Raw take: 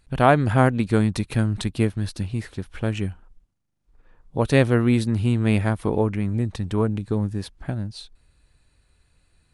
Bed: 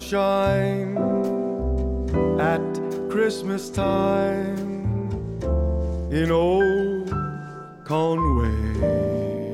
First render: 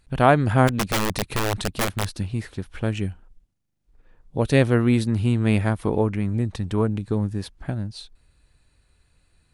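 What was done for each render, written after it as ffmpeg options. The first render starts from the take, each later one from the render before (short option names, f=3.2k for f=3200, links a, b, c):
-filter_complex "[0:a]asplit=3[a][b][c];[a]afade=t=out:st=0.67:d=0.02[d];[b]aeval=exprs='(mod(6.68*val(0)+1,2)-1)/6.68':c=same,afade=t=in:st=0.67:d=0.02,afade=t=out:st=2.11:d=0.02[e];[c]afade=t=in:st=2.11:d=0.02[f];[d][e][f]amix=inputs=3:normalize=0,asettb=1/sr,asplit=3[g][h][i];[g]atrim=end=2.914[j];[h]atrim=start=2.91:end=4.62,asetpts=PTS-STARTPTS,afade=t=in:d=0.004:c=qsin,afade=t=out:st=1.706:d=0.004:c=qsin,equalizer=f=1.1k:w=1.5:g=-4.5[k];[i]atrim=start=4.616[l];[j][k]acrossfade=d=0.004:c1=hsin:c2=qsin[m];[m][l]acrossfade=d=0.004:c1=qsin:c2=hsin"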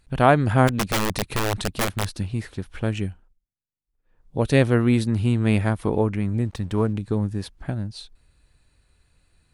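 -filter_complex "[0:a]asplit=3[a][b][c];[a]afade=t=out:st=6.44:d=0.02[d];[b]aeval=exprs='sgn(val(0))*max(abs(val(0))-0.00299,0)':c=same,afade=t=in:st=6.44:d=0.02,afade=t=out:st=6.92:d=0.02[e];[c]afade=t=in:st=6.92:d=0.02[f];[d][e][f]amix=inputs=3:normalize=0,asplit=3[g][h][i];[g]atrim=end=3.38,asetpts=PTS-STARTPTS,afade=t=out:st=3.01:d=0.37:silence=0.1[j];[h]atrim=start=3.38:end=4.02,asetpts=PTS-STARTPTS,volume=-20dB[k];[i]atrim=start=4.02,asetpts=PTS-STARTPTS,afade=t=in:d=0.37:silence=0.1[l];[j][k][l]concat=n=3:v=0:a=1"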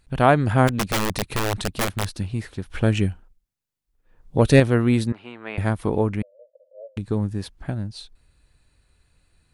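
-filter_complex "[0:a]asettb=1/sr,asplit=3[a][b][c];[a]atrim=end=2.704[d];[b]atrim=start=2.7:end=4.6,asetpts=PTS-STARTPTS,afade=t=in:d=0.004:c=qsin,afade=t=out:st=1.896:d=0.004:c=qsin,acontrast=47[e];[c]atrim=start=4.596[f];[d][e]acrossfade=d=0.004:c1=hsin:c2=qsin[g];[g][f]acrossfade=d=0.004:c1=qsin:c2=hsin,asettb=1/sr,asplit=3[h][i][j];[h]atrim=end=5.124[k];[i]atrim=start=5.12:end=5.58,asetpts=PTS-STARTPTS,afade=t=in:d=0.004:c=qsin,afade=t=out:st=0.456:d=0.004:c=qsin,highpass=720,lowpass=2.1k[l];[j]atrim=start=5.576[m];[k][l]acrossfade=d=0.004:c1=hsin:c2=qsin[n];[n][m]acrossfade=d=0.004:c1=qsin:c2=hsin,asettb=1/sr,asplit=3[o][p][q];[o]atrim=end=6.224[r];[p]atrim=start=6.22:end=6.97,asetpts=PTS-STARTPTS,afade=t=in:d=0.004:c=qsin,afade=t=out:st=0.746:d=0.004:c=qsin,asuperpass=centerf=570:order=8:qfactor=4.4[s];[q]atrim=start=6.966[t];[r][s]acrossfade=d=0.004:c1=hsin:c2=qsin[u];[u][t]acrossfade=d=0.004:c1=qsin:c2=hsin"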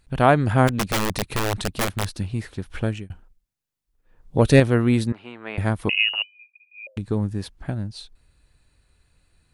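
-filter_complex "[0:a]asettb=1/sr,asplit=3[a][b][c];[a]atrim=end=5.894[d];[b]atrim=start=5.89:end=6.87,asetpts=PTS-STARTPTS,afade=t=in:d=0.004:c=qsin,afade=t=out:st=0.976:d=0.004:c=qsin,lowpass=f=2.6k:t=q:w=0.5098,lowpass=f=2.6k:t=q:w=0.6013,lowpass=f=2.6k:t=q:w=0.9,lowpass=f=2.6k:t=q:w=2.563,afreqshift=-3000[e];[c]atrim=start=6.866[f];[d][e]acrossfade=d=0.004:c1=hsin:c2=qsin[g];[g][f]acrossfade=d=0.004:c1=qsin:c2=hsin,asplit=2[h][i];[h]atrim=end=3.1,asetpts=PTS-STARTPTS,afade=t=out:st=2.69:d=0.41[j];[i]atrim=start=3.1,asetpts=PTS-STARTPTS,afade=t=in:d=0.004:c=hsin[k];[j][k]concat=n=2:v=0:a=1"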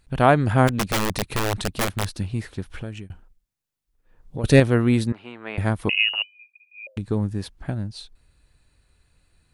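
-filter_complex "[0:a]asettb=1/sr,asplit=3[a][b][c];[a]atrim=end=2.714[d];[b]atrim=start=2.71:end=4.44,asetpts=PTS-STARTPTS,afade=t=in:d=0.004:c=qsin,afade=t=out:st=1.726:d=0.004:c=qsin,acompressor=threshold=-31dB:ratio=2.5:attack=3.2:release=140:knee=1:detection=peak[e];[c]atrim=start=4.436[f];[d][e]acrossfade=d=0.004:c1=hsin:c2=qsin[g];[g][f]acrossfade=d=0.004:c1=qsin:c2=hsin"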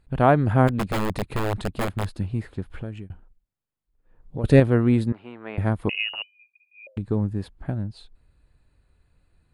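-af "highshelf=f=2.2k:g=-12,bandreject=f=5.8k:w=5.6"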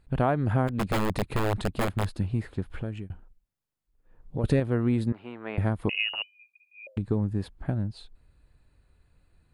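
-af "acompressor=threshold=-21dB:ratio=4"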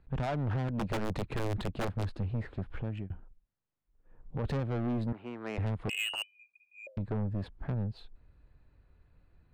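-filter_complex "[0:a]acrossover=split=190[a][b];[b]adynamicsmooth=sensitivity=5:basefreq=3.2k[c];[a][c]amix=inputs=2:normalize=0,asoftclip=type=tanh:threshold=-28.5dB"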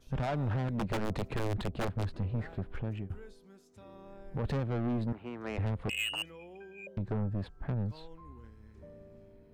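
-filter_complex "[1:a]volume=-31dB[a];[0:a][a]amix=inputs=2:normalize=0"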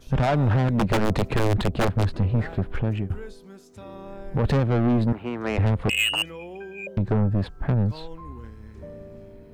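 -af "volume=11.5dB"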